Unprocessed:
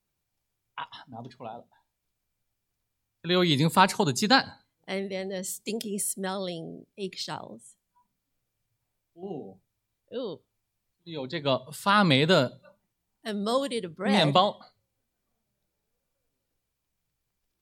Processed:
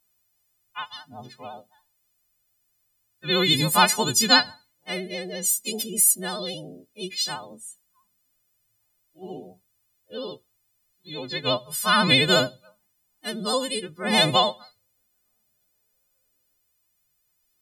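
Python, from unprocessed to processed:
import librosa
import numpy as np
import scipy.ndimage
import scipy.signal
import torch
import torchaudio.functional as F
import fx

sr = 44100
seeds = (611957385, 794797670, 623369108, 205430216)

y = fx.freq_snap(x, sr, grid_st=3)
y = fx.vibrato(y, sr, rate_hz=14.0, depth_cents=62.0)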